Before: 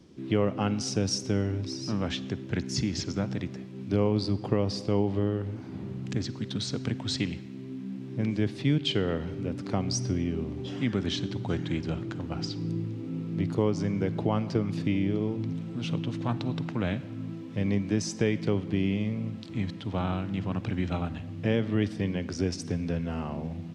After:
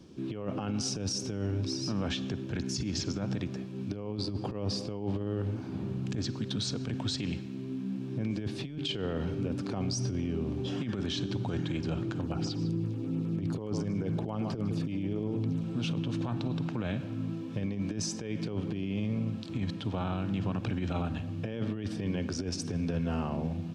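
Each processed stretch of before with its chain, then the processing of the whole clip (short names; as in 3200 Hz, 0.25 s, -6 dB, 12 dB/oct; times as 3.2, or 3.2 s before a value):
12.21–15.64 LFO notch saw down 9.6 Hz 960–7500 Hz + echo 0.152 s -14.5 dB
whole clip: negative-ratio compressor -29 dBFS, ratio -0.5; limiter -23.5 dBFS; notch 2000 Hz, Q 7.9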